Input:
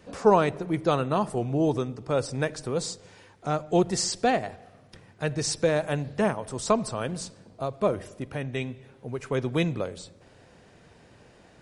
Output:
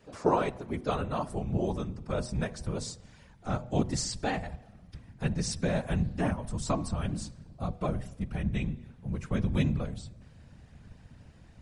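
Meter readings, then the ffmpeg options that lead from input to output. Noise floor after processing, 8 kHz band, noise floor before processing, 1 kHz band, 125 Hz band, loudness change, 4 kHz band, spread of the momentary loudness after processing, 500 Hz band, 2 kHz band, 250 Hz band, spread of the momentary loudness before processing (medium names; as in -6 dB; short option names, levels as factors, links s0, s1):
-55 dBFS, -6.0 dB, -56 dBFS, -6.5 dB, 0.0 dB, -5.0 dB, -6.0 dB, 12 LU, -8.5 dB, -6.0 dB, -3.0 dB, 13 LU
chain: -af "asubboost=boost=11.5:cutoff=100,afftfilt=real='hypot(re,im)*cos(2*PI*random(0))':imag='hypot(re,im)*sin(2*PI*random(1))':win_size=512:overlap=0.75,bandreject=f=123:t=h:w=4,bandreject=f=246:t=h:w=4,bandreject=f=369:t=h:w=4,bandreject=f=492:t=h:w=4,bandreject=f=615:t=h:w=4,bandreject=f=738:t=h:w=4,bandreject=f=861:t=h:w=4,bandreject=f=984:t=h:w=4,bandreject=f=1107:t=h:w=4"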